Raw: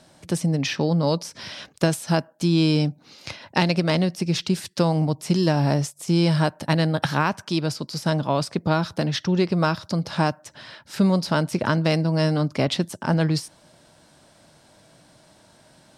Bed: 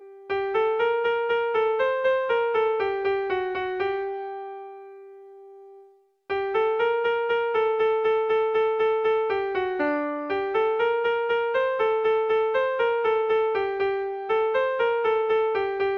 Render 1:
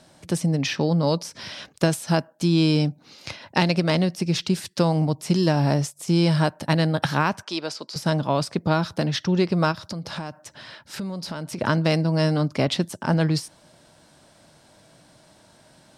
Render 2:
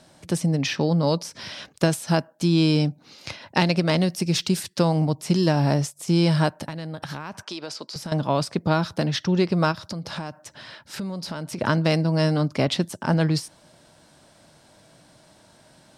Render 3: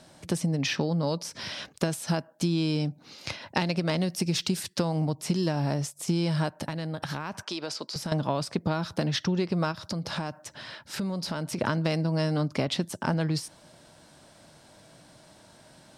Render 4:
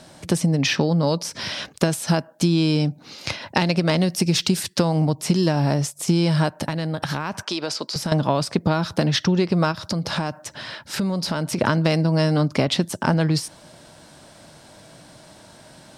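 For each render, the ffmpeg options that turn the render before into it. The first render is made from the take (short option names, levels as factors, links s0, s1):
-filter_complex "[0:a]asettb=1/sr,asplit=3[s0][s1][s2];[s0]atrim=end=7.434[s3];[s1]atrim=start=7.43:end=7.96,asetpts=PTS-STARTPTS,afade=t=in:d=0.004:c=qsin,afade=t=out:st=0.526:d=0.004:c=qsin,highpass=410,lowpass=7700[s4];[s2]atrim=start=7.956[s5];[s3][s4]acrossfade=d=0.004:c1=hsin:c2=qsin[s6];[s6][s5]acrossfade=d=0.004:c1=qsin:c2=hsin,asplit=3[s7][s8][s9];[s7]afade=t=out:st=9.71:d=0.02[s10];[s8]acompressor=threshold=0.0398:ratio=5:attack=3.2:release=140:knee=1:detection=peak,afade=t=in:st=9.71:d=0.02,afade=t=out:st=11.57:d=0.02[s11];[s9]afade=t=in:st=11.57:d=0.02[s12];[s10][s11][s12]amix=inputs=3:normalize=0"
-filter_complex "[0:a]asettb=1/sr,asplit=3[s0][s1][s2];[s0]atrim=end=4.014[s3];[s1]atrim=start=4.01:end=4.63,asetpts=PTS-STARTPTS,afade=t=in:d=0.004:c=qsin,afade=t=out:st=0.616:d=0.004:c=qsin,highshelf=f=6800:g=9[s4];[s2]atrim=start=4.626[s5];[s3][s4]acrossfade=d=0.004:c1=hsin:c2=qsin[s6];[s6][s5]acrossfade=d=0.004:c1=qsin:c2=hsin,asettb=1/sr,asplit=3[s7][s8][s9];[s7]atrim=end=6.654[s10];[s8]atrim=start=6.65:end=8.12,asetpts=PTS-STARTPTS,afade=t=in:d=0.004:c=qsin,afade=t=out:st=1.466:d=0.004:c=qsin,acompressor=threshold=0.0398:ratio=12:attack=3.2:release=140:knee=1:detection=peak[s11];[s9]atrim=start=8.116[s12];[s10][s11]acrossfade=d=0.004:c1=hsin:c2=qsin[s13];[s13][s12]acrossfade=d=0.004:c1=qsin:c2=hsin"
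-af "acompressor=threshold=0.0708:ratio=6"
-af "volume=2.37,alimiter=limit=0.794:level=0:latency=1"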